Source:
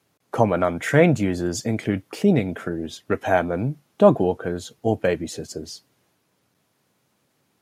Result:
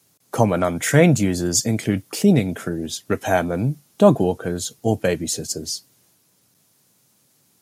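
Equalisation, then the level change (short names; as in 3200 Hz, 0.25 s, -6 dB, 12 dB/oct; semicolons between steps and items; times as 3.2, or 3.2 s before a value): HPF 79 Hz; tone controls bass +5 dB, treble +14 dB; 0.0 dB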